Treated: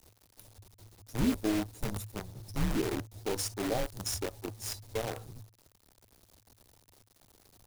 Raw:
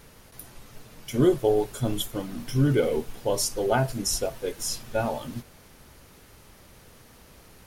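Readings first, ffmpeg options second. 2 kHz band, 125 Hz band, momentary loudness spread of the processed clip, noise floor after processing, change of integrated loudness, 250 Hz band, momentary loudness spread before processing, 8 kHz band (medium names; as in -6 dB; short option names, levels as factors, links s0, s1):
-6.0 dB, -10.0 dB, 11 LU, -68 dBFS, -8.5 dB, -6.0 dB, 17 LU, -8.0 dB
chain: -af "afftfilt=real='re*(1-between(b*sr/4096,1100,3600))':imag='im*(1-between(b*sr/4096,1100,3600))':win_size=4096:overlap=0.75,acrusher=bits=5:dc=4:mix=0:aa=0.000001,afreqshift=-110,volume=0.376"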